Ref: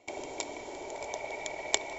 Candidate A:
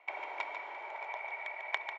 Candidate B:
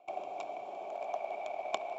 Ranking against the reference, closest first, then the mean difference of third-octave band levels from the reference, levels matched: B, A; 8.0, 12.0 dB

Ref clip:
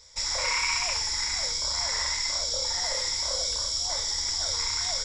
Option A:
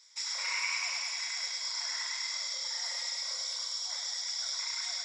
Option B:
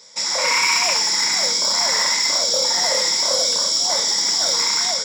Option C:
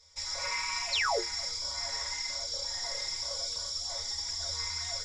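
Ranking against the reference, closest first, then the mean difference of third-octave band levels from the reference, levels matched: C, B, A; 2.5, 4.0, 6.5 dB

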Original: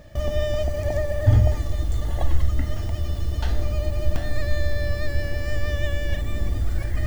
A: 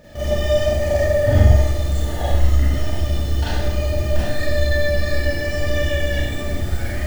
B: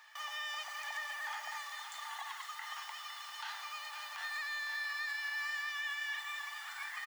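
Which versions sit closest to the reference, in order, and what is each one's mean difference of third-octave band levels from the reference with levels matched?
A, B; 3.5, 19.0 dB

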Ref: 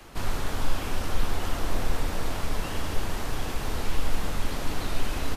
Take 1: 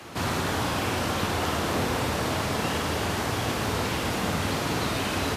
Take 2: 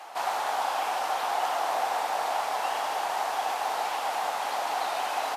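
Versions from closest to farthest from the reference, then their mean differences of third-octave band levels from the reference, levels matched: 1, 2; 1.5, 11.0 dB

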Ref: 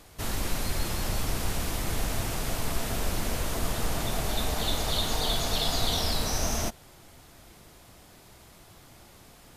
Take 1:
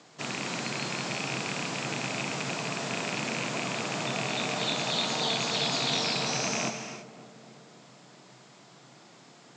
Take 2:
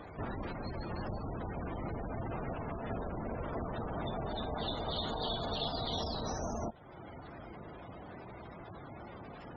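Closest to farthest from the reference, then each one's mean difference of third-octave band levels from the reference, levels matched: 1, 2; 6.5, 15.0 dB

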